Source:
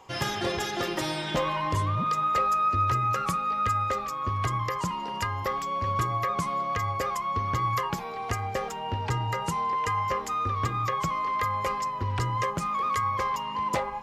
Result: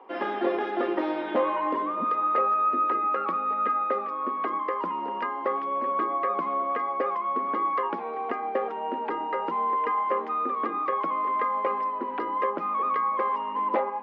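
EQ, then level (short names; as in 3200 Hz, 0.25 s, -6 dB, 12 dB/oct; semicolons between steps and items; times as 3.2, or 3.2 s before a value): steep high-pass 240 Hz 48 dB/oct; air absorption 250 m; tape spacing loss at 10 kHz 42 dB; +7.5 dB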